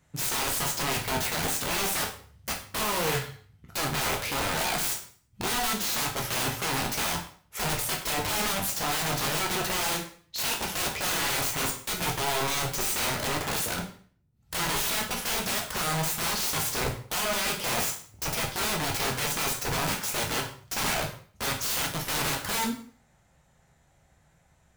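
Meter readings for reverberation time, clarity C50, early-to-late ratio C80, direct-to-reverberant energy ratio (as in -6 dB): 0.45 s, 8.0 dB, 12.5 dB, 0.0 dB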